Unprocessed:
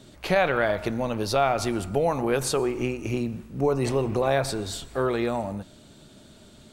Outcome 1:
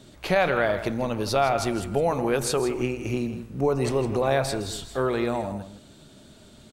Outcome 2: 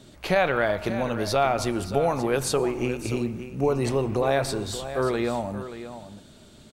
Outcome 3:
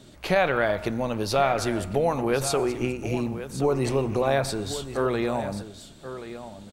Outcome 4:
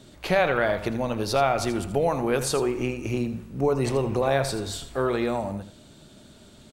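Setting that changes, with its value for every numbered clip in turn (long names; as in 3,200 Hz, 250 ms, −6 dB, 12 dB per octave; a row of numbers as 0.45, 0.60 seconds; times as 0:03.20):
single-tap delay, delay time: 162, 579, 1,079, 81 milliseconds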